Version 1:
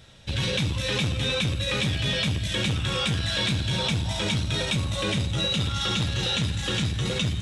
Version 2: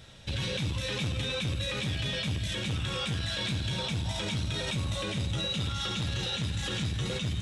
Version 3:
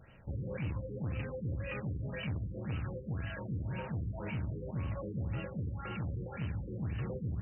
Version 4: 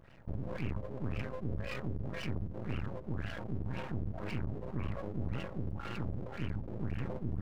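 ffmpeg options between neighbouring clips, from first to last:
-af "alimiter=limit=-23.5dB:level=0:latency=1:release=130"
-af "afftfilt=real='re*lt(b*sr/1024,500*pow(3100/500,0.5+0.5*sin(2*PI*1.9*pts/sr)))':imag='im*lt(b*sr/1024,500*pow(3100/500,0.5+0.5*sin(2*PI*1.9*pts/sr)))':win_size=1024:overlap=0.75,volume=-4.5dB"
-af "aeval=exprs='max(val(0),0)':c=same,volume=3.5dB"

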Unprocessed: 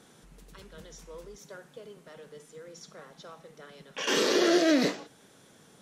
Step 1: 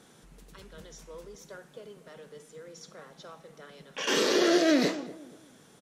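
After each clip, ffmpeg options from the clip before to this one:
-filter_complex "[0:a]asplit=2[a][b];[b]adelay=239,lowpass=f=810:p=1,volume=-15dB,asplit=2[c][d];[d]adelay=239,lowpass=f=810:p=1,volume=0.35,asplit=2[e][f];[f]adelay=239,lowpass=f=810:p=1,volume=0.35[g];[a][c][e][g]amix=inputs=4:normalize=0"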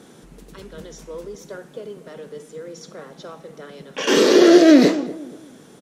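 -af "equalizer=f=310:t=o:w=1.9:g=7.5,volume=6.5dB"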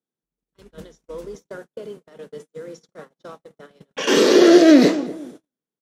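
-af "agate=range=-46dB:threshold=-36dB:ratio=16:detection=peak"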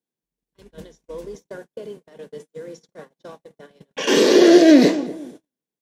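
-af "bandreject=f=1.3k:w=5.3"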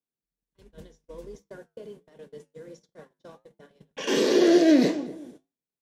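-af "lowshelf=f=110:g=8.5,flanger=delay=7.3:depth=2.7:regen=-78:speed=1.4:shape=triangular,volume=-4dB"

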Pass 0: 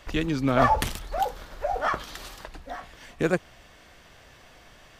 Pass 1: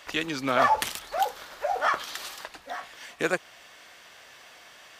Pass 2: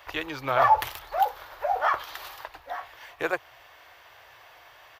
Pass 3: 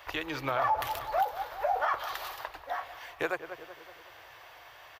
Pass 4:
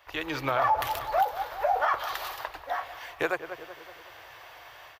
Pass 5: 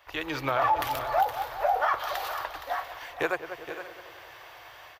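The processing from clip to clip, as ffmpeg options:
-filter_complex "[0:a]highpass=f=1k:p=1,asplit=2[a][b];[b]alimiter=limit=-18dB:level=0:latency=1:release=235,volume=1dB[c];[a][c]amix=inputs=2:normalize=0,volume=-1.5dB"
-af "firequalizer=gain_entry='entry(120,0);entry(200,-30);entry(300,-10);entry(900,-1);entry(1300,-6);entry(8400,-20);entry(14000,-2)':delay=0.05:min_phase=1,volume=5.5dB"
-filter_complex "[0:a]asplit=2[a][b];[b]adelay=187,lowpass=f=1.4k:p=1,volume=-13dB,asplit=2[c][d];[d]adelay=187,lowpass=f=1.4k:p=1,volume=0.55,asplit=2[e][f];[f]adelay=187,lowpass=f=1.4k:p=1,volume=0.55,asplit=2[g][h];[h]adelay=187,lowpass=f=1.4k:p=1,volume=0.55,asplit=2[i][j];[j]adelay=187,lowpass=f=1.4k:p=1,volume=0.55,asplit=2[k][l];[l]adelay=187,lowpass=f=1.4k:p=1,volume=0.55[m];[a][c][e][g][i][k][m]amix=inputs=7:normalize=0,alimiter=limit=-19dB:level=0:latency=1:release=144"
-af "dynaudnorm=f=100:g=3:m=12dB,volume=-8.5dB"
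-af "aecho=1:1:468|521:0.282|0.126"

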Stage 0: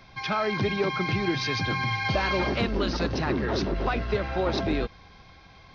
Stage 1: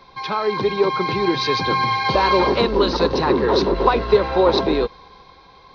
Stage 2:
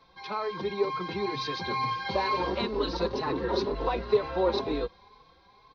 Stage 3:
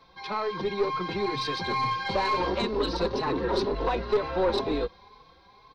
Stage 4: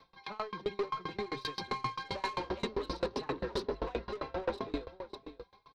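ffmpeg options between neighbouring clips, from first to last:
-af "equalizer=f=530:t=o:w=1.1:g=13,dynaudnorm=f=250:g=9:m=11.5dB,equalizer=f=100:t=o:w=0.33:g=-9,equalizer=f=400:t=o:w=0.33:g=3,equalizer=f=630:t=o:w=0.33:g=-10,equalizer=f=1k:t=o:w=0.33:g=12,equalizer=f=4k:t=o:w=0.33:g=10,volume=-2dB"
-filter_complex "[0:a]asplit=2[a][b];[b]adelay=4.1,afreqshift=2.1[c];[a][c]amix=inputs=2:normalize=1,volume=-8.5dB"
-af "aeval=exprs='(tanh(11.2*val(0)+0.25)-tanh(0.25))/11.2':c=same,volume=3.5dB"
-af "aecho=1:1:562:0.188,asoftclip=type=tanh:threshold=-22dB,aeval=exprs='val(0)*pow(10,-27*if(lt(mod(7.6*n/s,1),2*abs(7.6)/1000),1-mod(7.6*n/s,1)/(2*abs(7.6)/1000),(mod(7.6*n/s,1)-2*abs(7.6)/1000)/(1-2*abs(7.6)/1000))/20)':c=same"

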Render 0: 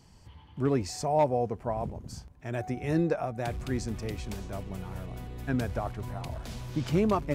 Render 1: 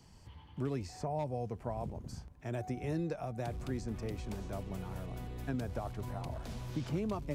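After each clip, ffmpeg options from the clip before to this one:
-filter_complex "[0:a]acrossover=split=180|1300|2600[a][b][c][d];[a]acompressor=threshold=-37dB:ratio=4[e];[b]acompressor=threshold=-35dB:ratio=4[f];[c]acompressor=threshold=-59dB:ratio=4[g];[d]acompressor=threshold=-53dB:ratio=4[h];[e][f][g][h]amix=inputs=4:normalize=0,volume=-2dB"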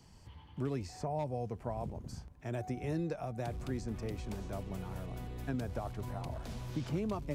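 -af anull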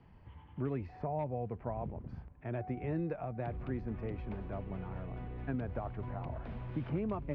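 -af "lowpass=f=2.5k:w=0.5412,lowpass=f=2.5k:w=1.3066"

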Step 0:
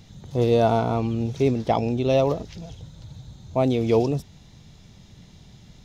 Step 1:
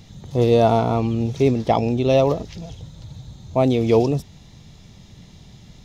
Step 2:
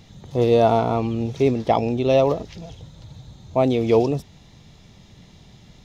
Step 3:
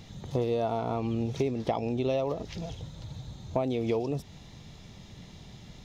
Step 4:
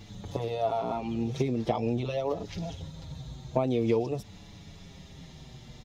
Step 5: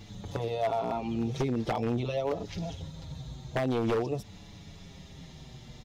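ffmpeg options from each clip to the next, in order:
-af "bandreject=f=1.5k:w=15,volume=3.5dB"
-af "bass=f=250:g=-4,treble=f=4k:g=-4"
-af "acompressor=threshold=-25dB:ratio=12"
-filter_complex "[0:a]asplit=2[a][b];[b]adelay=6.5,afreqshift=-0.48[c];[a][c]amix=inputs=2:normalize=1,volume=3.5dB"
-af "aeval=exprs='0.0841*(abs(mod(val(0)/0.0841+3,4)-2)-1)':c=same"

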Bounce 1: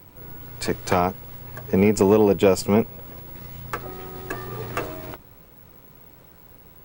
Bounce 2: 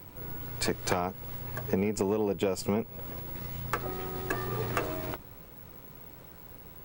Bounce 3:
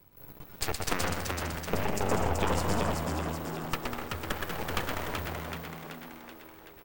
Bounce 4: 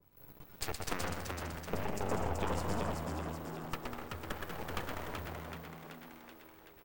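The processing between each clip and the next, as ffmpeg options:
-af "acompressor=threshold=-25dB:ratio=8"
-filter_complex "[0:a]asplit=2[a][b];[b]aecho=0:1:120|198|248.7|281.7|303.1:0.631|0.398|0.251|0.158|0.1[c];[a][c]amix=inputs=2:normalize=0,aeval=exprs='0.299*(cos(1*acos(clip(val(0)/0.299,-1,1)))-cos(1*PI/2))+0.106*(cos(3*acos(clip(val(0)/0.299,-1,1)))-cos(3*PI/2))+0.0168*(cos(5*acos(clip(val(0)/0.299,-1,1)))-cos(5*PI/2))+0.00335*(cos(7*acos(clip(val(0)/0.299,-1,1)))-cos(7*PI/2))+0.0299*(cos(8*acos(clip(val(0)/0.299,-1,1)))-cos(8*PI/2))':c=same,asplit=2[d][e];[e]asplit=8[f][g][h][i][j][k][l][m];[f]adelay=380,afreqshift=80,volume=-4dB[n];[g]adelay=760,afreqshift=160,volume=-8.9dB[o];[h]adelay=1140,afreqshift=240,volume=-13.8dB[p];[i]adelay=1520,afreqshift=320,volume=-18.6dB[q];[j]adelay=1900,afreqshift=400,volume=-23.5dB[r];[k]adelay=2280,afreqshift=480,volume=-28.4dB[s];[l]adelay=2660,afreqshift=560,volume=-33.3dB[t];[m]adelay=3040,afreqshift=640,volume=-38.2dB[u];[n][o][p][q][r][s][t][u]amix=inputs=8:normalize=0[v];[d][v]amix=inputs=2:normalize=0,volume=4dB"
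-af "adynamicequalizer=threshold=0.00501:dfrequency=1700:dqfactor=0.7:tfrequency=1700:tqfactor=0.7:attack=5:release=100:ratio=0.375:range=1.5:mode=cutabove:tftype=highshelf,volume=-6.5dB"

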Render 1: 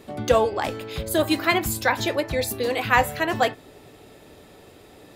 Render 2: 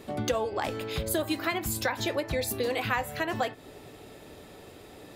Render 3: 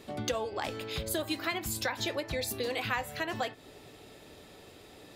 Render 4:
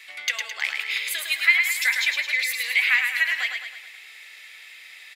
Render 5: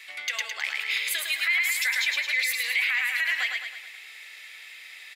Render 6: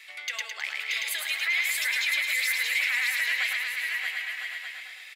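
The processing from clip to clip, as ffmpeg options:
-af "acompressor=threshold=-26dB:ratio=5"
-af "equalizer=f=4.3k:w=0.61:g=5,volume=-5dB"
-af "highpass=f=2.1k:t=q:w=6.2,aecho=1:1:107|214|321|428|535|642|749:0.562|0.292|0.152|0.0791|0.0411|0.0214|0.0111,volume=5dB"
-af "alimiter=limit=-16dB:level=0:latency=1:release=37"
-filter_complex "[0:a]highpass=f=290:w=0.5412,highpass=f=290:w=1.3066,asplit=2[a][b];[b]aecho=0:1:630|1008|1235|1371|1453:0.631|0.398|0.251|0.158|0.1[c];[a][c]amix=inputs=2:normalize=0,volume=-3dB"

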